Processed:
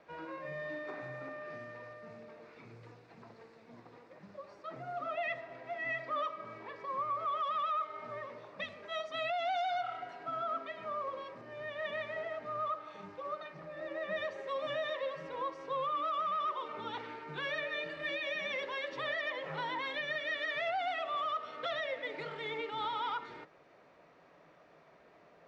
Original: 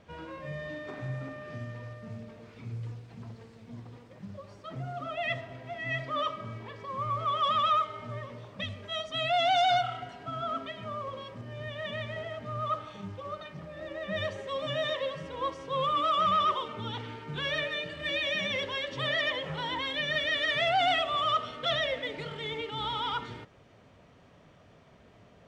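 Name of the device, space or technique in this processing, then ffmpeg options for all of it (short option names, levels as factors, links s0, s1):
DJ mixer with the lows and highs turned down: -filter_complex "[0:a]equalizer=f=100:t=o:w=0.33:g=-7,equalizer=f=160:t=o:w=0.33:g=9,equalizer=f=315:t=o:w=0.33:g=6,equalizer=f=3150:t=o:w=0.33:g=-10,acrossover=split=380 4900:gain=0.126 1 0.178[s0][s1][s2];[s0][s1][s2]amix=inputs=3:normalize=0,alimiter=level_in=1.58:limit=0.0631:level=0:latency=1:release=277,volume=0.631"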